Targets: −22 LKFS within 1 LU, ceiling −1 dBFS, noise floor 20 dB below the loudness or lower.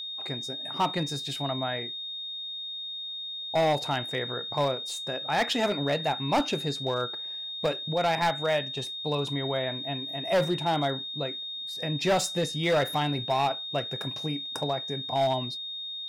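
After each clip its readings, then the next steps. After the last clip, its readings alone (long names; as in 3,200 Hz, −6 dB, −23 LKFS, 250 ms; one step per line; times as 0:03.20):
share of clipped samples 1.5%; peaks flattened at −19.5 dBFS; interfering tone 3,700 Hz; level of the tone −34 dBFS; integrated loudness −29.0 LKFS; sample peak −19.5 dBFS; target loudness −22.0 LKFS
→ clipped peaks rebuilt −19.5 dBFS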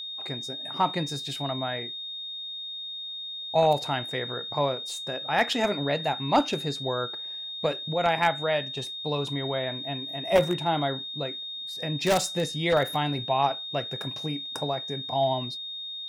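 share of clipped samples 0.0%; interfering tone 3,700 Hz; level of the tone −34 dBFS
→ notch filter 3,700 Hz, Q 30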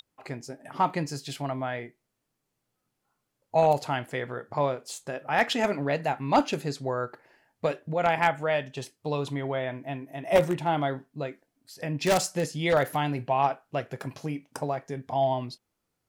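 interfering tone none found; integrated loudness −28.5 LKFS; sample peak −10.0 dBFS; target loudness −22.0 LKFS
→ level +6.5 dB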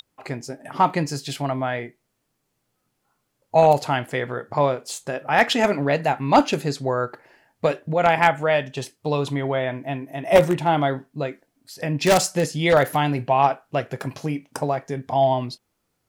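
integrated loudness −22.0 LKFS; sample peak −3.5 dBFS; background noise floor −74 dBFS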